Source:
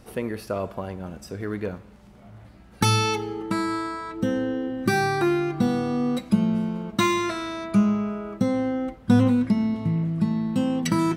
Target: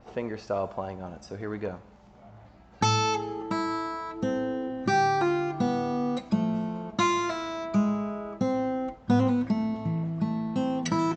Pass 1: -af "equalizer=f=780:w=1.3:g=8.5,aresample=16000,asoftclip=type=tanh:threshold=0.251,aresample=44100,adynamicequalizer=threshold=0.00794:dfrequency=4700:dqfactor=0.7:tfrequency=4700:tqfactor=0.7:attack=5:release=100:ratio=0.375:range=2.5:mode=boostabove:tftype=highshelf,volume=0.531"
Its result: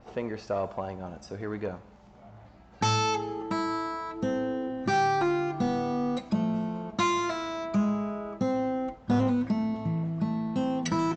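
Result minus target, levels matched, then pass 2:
saturation: distortion +15 dB
-af "equalizer=f=780:w=1.3:g=8.5,aresample=16000,asoftclip=type=tanh:threshold=0.75,aresample=44100,adynamicequalizer=threshold=0.00794:dfrequency=4700:dqfactor=0.7:tfrequency=4700:tqfactor=0.7:attack=5:release=100:ratio=0.375:range=2.5:mode=boostabove:tftype=highshelf,volume=0.531"

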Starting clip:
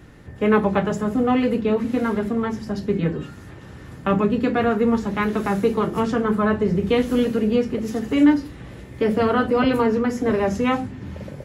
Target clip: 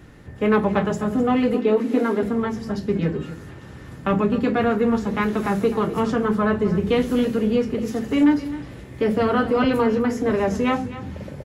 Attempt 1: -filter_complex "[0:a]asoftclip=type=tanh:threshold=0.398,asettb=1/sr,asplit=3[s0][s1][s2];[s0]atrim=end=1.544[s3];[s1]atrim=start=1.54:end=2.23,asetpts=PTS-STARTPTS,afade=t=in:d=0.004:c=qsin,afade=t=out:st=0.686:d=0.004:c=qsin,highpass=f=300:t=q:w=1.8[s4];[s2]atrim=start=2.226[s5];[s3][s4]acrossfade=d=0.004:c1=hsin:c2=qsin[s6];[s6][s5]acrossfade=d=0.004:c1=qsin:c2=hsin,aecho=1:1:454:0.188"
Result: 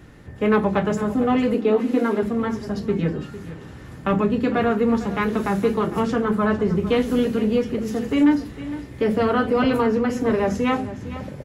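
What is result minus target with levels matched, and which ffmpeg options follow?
echo 197 ms late
-filter_complex "[0:a]asoftclip=type=tanh:threshold=0.398,asettb=1/sr,asplit=3[s0][s1][s2];[s0]atrim=end=1.544[s3];[s1]atrim=start=1.54:end=2.23,asetpts=PTS-STARTPTS,afade=t=in:d=0.004:c=qsin,afade=t=out:st=0.686:d=0.004:c=qsin,highpass=f=300:t=q:w=1.8[s4];[s2]atrim=start=2.226[s5];[s3][s4]acrossfade=d=0.004:c1=hsin:c2=qsin[s6];[s6][s5]acrossfade=d=0.004:c1=qsin:c2=hsin,aecho=1:1:257:0.188"

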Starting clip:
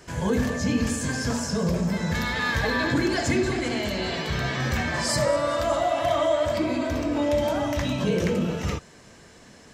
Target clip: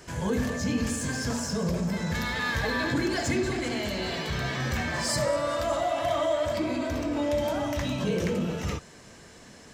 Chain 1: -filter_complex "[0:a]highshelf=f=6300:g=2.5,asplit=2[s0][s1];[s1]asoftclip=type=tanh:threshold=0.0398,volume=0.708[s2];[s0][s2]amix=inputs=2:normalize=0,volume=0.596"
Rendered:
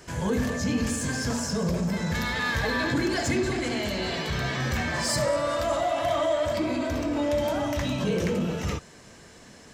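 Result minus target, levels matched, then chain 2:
saturation: distortion -4 dB
-filter_complex "[0:a]highshelf=f=6300:g=2.5,asplit=2[s0][s1];[s1]asoftclip=type=tanh:threshold=0.0126,volume=0.708[s2];[s0][s2]amix=inputs=2:normalize=0,volume=0.596"

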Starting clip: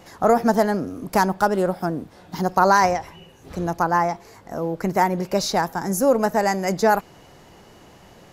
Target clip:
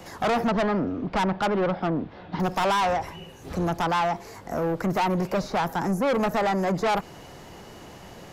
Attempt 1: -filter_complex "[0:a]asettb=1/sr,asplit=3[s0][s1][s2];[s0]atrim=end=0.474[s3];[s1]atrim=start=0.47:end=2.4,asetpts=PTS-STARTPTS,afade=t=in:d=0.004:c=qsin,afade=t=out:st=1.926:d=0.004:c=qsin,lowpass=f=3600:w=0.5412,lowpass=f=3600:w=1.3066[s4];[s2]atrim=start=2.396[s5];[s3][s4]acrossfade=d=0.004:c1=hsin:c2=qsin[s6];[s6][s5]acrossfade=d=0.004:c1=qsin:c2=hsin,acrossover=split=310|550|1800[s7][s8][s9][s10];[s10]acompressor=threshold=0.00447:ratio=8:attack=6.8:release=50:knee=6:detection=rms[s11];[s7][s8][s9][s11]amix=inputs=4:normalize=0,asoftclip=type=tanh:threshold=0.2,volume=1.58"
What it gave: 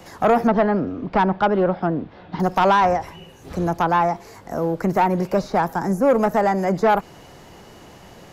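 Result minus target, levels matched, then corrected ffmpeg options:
saturation: distortion -8 dB
-filter_complex "[0:a]asettb=1/sr,asplit=3[s0][s1][s2];[s0]atrim=end=0.474[s3];[s1]atrim=start=0.47:end=2.4,asetpts=PTS-STARTPTS,afade=t=in:d=0.004:c=qsin,afade=t=out:st=1.926:d=0.004:c=qsin,lowpass=f=3600:w=0.5412,lowpass=f=3600:w=1.3066[s4];[s2]atrim=start=2.396[s5];[s3][s4]acrossfade=d=0.004:c1=hsin:c2=qsin[s6];[s6][s5]acrossfade=d=0.004:c1=qsin:c2=hsin,acrossover=split=310|550|1800[s7][s8][s9][s10];[s10]acompressor=threshold=0.00447:ratio=8:attack=6.8:release=50:knee=6:detection=rms[s11];[s7][s8][s9][s11]amix=inputs=4:normalize=0,asoftclip=type=tanh:threshold=0.0596,volume=1.58"

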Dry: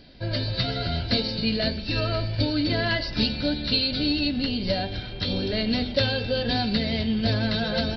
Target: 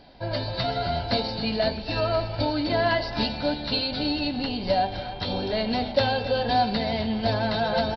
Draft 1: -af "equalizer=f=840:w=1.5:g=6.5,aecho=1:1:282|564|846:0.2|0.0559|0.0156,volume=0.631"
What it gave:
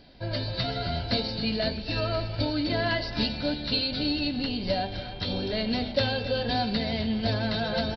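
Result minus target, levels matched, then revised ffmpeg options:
1 kHz band -5.5 dB
-af "equalizer=f=840:w=1.5:g=16.5,aecho=1:1:282|564|846:0.2|0.0559|0.0156,volume=0.631"

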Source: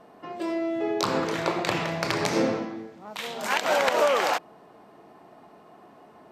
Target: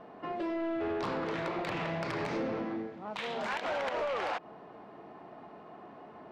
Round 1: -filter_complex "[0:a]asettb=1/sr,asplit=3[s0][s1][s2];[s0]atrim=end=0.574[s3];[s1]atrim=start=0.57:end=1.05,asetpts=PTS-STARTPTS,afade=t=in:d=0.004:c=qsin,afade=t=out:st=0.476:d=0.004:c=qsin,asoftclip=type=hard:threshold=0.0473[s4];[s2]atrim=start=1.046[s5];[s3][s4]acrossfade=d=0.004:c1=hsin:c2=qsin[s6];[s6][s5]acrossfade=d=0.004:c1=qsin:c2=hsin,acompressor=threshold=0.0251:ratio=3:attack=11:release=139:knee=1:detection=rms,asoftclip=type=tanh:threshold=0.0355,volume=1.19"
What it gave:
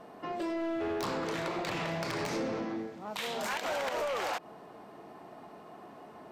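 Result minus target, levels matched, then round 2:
4 kHz band +3.5 dB
-filter_complex "[0:a]asettb=1/sr,asplit=3[s0][s1][s2];[s0]atrim=end=0.574[s3];[s1]atrim=start=0.57:end=1.05,asetpts=PTS-STARTPTS,afade=t=in:d=0.004:c=qsin,afade=t=out:st=0.476:d=0.004:c=qsin,asoftclip=type=hard:threshold=0.0473[s4];[s2]atrim=start=1.046[s5];[s3][s4]acrossfade=d=0.004:c1=hsin:c2=qsin[s6];[s6][s5]acrossfade=d=0.004:c1=qsin:c2=hsin,acompressor=threshold=0.0251:ratio=3:attack=11:release=139:knee=1:detection=rms,lowpass=3100,asoftclip=type=tanh:threshold=0.0355,volume=1.19"

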